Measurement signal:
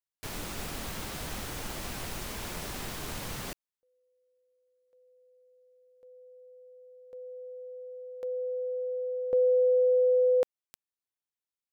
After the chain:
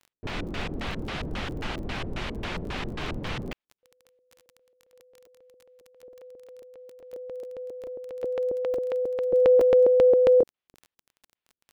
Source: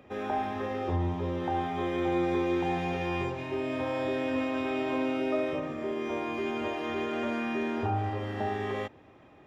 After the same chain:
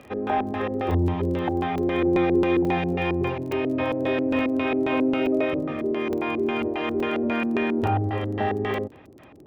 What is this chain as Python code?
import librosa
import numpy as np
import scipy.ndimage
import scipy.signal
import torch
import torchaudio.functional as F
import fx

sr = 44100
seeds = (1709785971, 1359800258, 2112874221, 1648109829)

y = fx.filter_lfo_lowpass(x, sr, shape='square', hz=3.7, low_hz=370.0, high_hz=3000.0, q=1.3)
y = fx.dmg_crackle(y, sr, seeds[0], per_s=16.0, level_db=-43.0)
y = fx.buffer_crackle(y, sr, first_s=0.91, period_s=0.87, block=128, kind='zero')
y = y * 10.0 ** (6.5 / 20.0)